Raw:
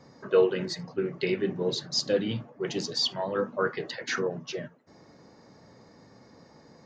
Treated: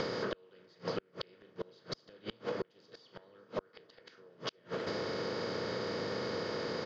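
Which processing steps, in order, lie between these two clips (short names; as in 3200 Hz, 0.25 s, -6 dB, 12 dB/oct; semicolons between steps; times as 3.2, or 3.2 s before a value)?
per-bin compression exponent 0.4; low shelf 160 Hz -8 dB; doubler 39 ms -13 dB; flipped gate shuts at -16 dBFS, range -39 dB; compressor 6:1, threshold -37 dBFS, peak gain reduction 12.5 dB; LPF 4200 Hz 12 dB/oct; low shelf 75 Hz +9 dB; gain +3 dB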